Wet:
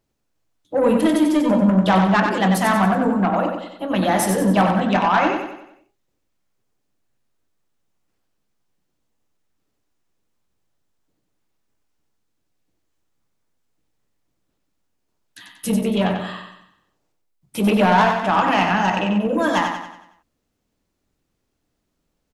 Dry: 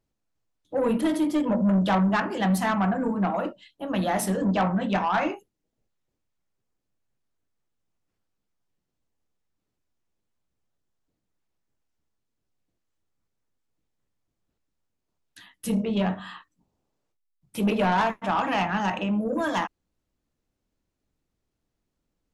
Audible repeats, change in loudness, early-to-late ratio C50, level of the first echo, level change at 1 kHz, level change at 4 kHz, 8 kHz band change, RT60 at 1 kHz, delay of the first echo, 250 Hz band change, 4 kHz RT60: 5, +7.0 dB, none, -5.5 dB, +7.5 dB, +8.0 dB, +8.0 dB, none, 93 ms, +6.5 dB, none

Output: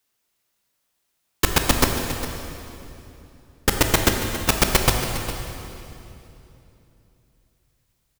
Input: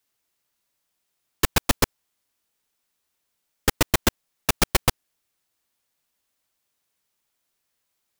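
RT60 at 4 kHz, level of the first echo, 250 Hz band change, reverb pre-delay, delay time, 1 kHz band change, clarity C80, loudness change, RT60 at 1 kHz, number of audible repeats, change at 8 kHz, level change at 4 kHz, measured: 2.5 s, -13.5 dB, +4.5 dB, 15 ms, 0.407 s, +4.0 dB, 4.5 dB, +2.5 dB, 2.8 s, 1, +3.5 dB, +3.5 dB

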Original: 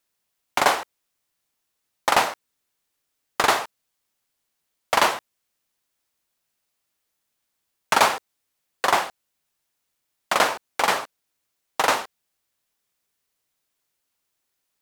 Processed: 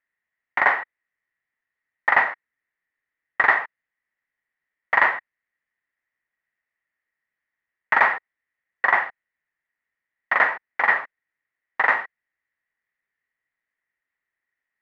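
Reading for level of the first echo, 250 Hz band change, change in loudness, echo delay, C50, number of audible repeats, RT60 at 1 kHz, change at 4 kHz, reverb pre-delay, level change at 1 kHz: none, -9.0 dB, +1.5 dB, none, none, none, none, -16.0 dB, none, -1.5 dB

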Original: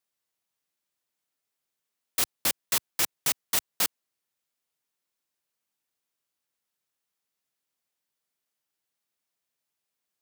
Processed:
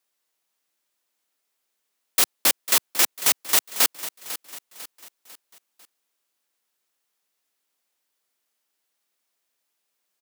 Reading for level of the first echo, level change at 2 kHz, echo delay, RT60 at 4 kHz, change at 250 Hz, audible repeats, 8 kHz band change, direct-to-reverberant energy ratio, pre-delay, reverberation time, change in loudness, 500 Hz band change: -14.0 dB, +7.0 dB, 0.498 s, none, +4.5 dB, 4, +7.0 dB, none, none, none, +7.0 dB, +7.0 dB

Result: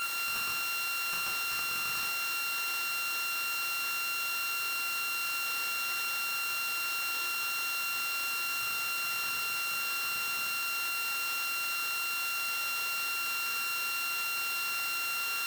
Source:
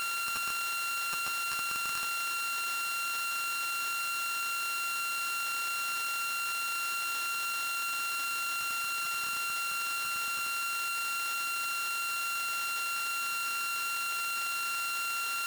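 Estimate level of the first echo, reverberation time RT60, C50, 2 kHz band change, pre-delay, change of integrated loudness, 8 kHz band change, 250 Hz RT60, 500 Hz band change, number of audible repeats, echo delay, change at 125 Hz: none, 0.65 s, 4.5 dB, +1.5 dB, 6 ms, +0.5 dB, -1.0 dB, 0.60 s, +2.5 dB, none, none, n/a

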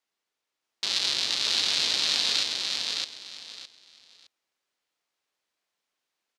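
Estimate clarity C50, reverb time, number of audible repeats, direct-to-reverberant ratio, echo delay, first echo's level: none, none, 3, none, 0.613 s, -3.0 dB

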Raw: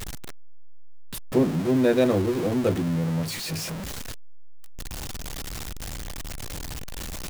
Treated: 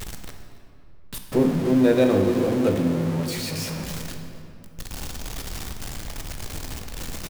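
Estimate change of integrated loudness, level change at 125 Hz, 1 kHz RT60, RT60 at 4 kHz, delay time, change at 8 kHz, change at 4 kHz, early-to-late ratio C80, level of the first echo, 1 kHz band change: +2.5 dB, +1.0 dB, 2.6 s, 1.6 s, 0.275 s, +0.5 dB, +1.0 dB, 6.0 dB, -19.0 dB, +2.0 dB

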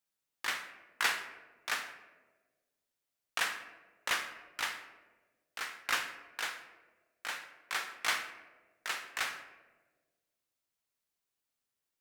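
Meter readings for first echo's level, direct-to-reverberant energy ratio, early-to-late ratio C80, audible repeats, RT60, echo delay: none, 7.0 dB, 11.5 dB, none, 1.4 s, none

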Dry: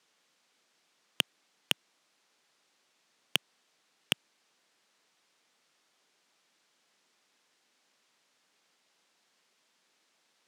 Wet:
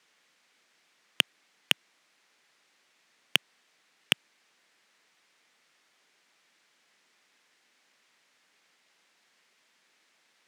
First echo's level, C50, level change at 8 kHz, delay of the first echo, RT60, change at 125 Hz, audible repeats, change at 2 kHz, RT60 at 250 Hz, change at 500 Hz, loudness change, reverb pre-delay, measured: none, none, +2.0 dB, none, none, +2.0 dB, none, +6.0 dB, none, +2.0 dB, +4.5 dB, none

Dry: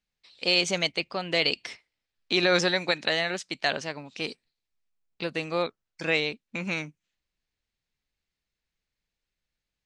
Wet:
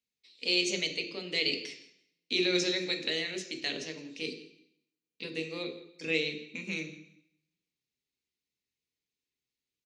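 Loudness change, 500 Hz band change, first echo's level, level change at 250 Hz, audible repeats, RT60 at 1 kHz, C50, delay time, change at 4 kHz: -5.0 dB, -6.5 dB, -19.5 dB, -3.0 dB, 2, 0.75 s, 9.0 dB, 0.166 s, -3.5 dB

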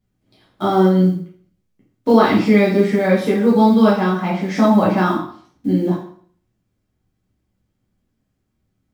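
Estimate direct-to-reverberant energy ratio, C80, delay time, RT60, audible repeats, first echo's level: -7.0 dB, 9.0 dB, none, 0.55 s, none, none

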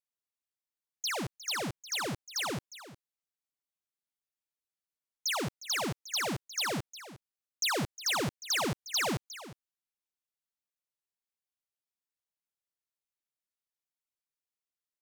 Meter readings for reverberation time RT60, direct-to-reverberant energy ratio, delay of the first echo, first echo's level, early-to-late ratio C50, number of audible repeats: none, none, 0.358 s, -15.5 dB, none, 1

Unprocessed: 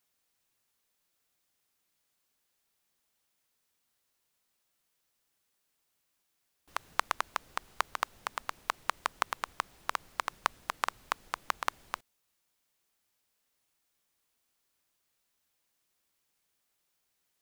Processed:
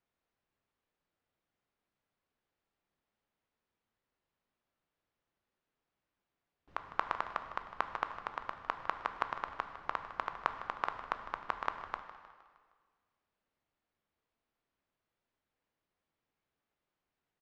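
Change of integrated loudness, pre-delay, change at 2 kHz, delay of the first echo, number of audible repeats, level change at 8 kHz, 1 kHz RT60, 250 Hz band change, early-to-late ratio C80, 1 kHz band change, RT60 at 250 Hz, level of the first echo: -3.0 dB, 7 ms, -4.5 dB, 0.155 s, 4, under -20 dB, 1.7 s, +1.0 dB, 9.0 dB, -2.0 dB, 1.7 s, -14.0 dB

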